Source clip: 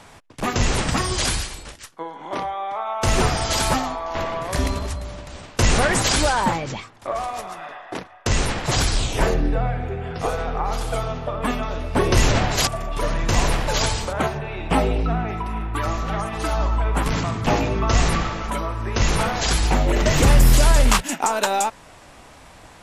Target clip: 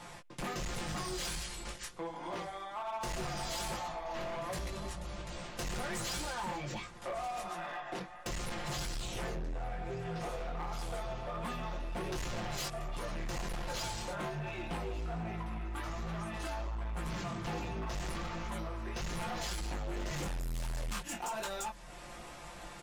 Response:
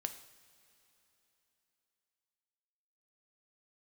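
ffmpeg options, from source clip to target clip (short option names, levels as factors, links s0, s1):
-filter_complex "[0:a]flanger=delay=17:depth=4.6:speed=1.3,acompressor=threshold=0.0126:ratio=2.5,aecho=1:1:5.7:0.79,asplit=2[s0][s1];[s1]aecho=0:1:1183|2366|3549:0.0708|0.029|0.0119[s2];[s0][s2]amix=inputs=2:normalize=0,asoftclip=type=hard:threshold=0.0237,volume=0.794"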